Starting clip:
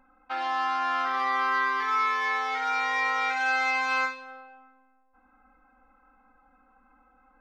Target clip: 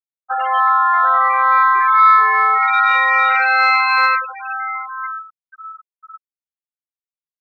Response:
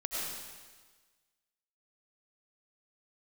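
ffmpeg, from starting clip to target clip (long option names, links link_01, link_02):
-filter_complex "[0:a]asplit=2[link_01][link_02];[link_02]adelay=1007,lowpass=frequency=3600:poles=1,volume=-15.5dB,asplit=2[link_03][link_04];[link_04]adelay=1007,lowpass=frequency=3600:poles=1,volume=0.45,asplit=2[link_05][link_06];[link_06]adelay=1007,lowpass=frequency=3600:poles=1,volume=0.45,asplit=2[link_07][link_08];[link_08]adelay=1007,lowpass=frequency=3600:poles=1,volume=0.45[link_09];[link_01][link_03][link_05][link_07][link_09]amix=inputs=5:normalize=0[link_10];[1:a]atrim=start_sample=2205,afade=type=out:start_time=0.17:duration=0.01,atrim=end_sample=7938[link_11];[link_10][link_11]afir=irnorm=-1:irlink=0,asplit=2[link_12][link_13];[link_13]acompressor=threshold=-35dB:ratio=5,volume=3dB[link_14];[link_12][link_14]amix=inputs=2:normalize=0,afftfilt=real='re*gte(hypot(re,im),0.0891)':imag='im*gte(hypot(re,im),0.0891)':win_size=1024:overlap=0.75,acontrast=42,volume=3dB"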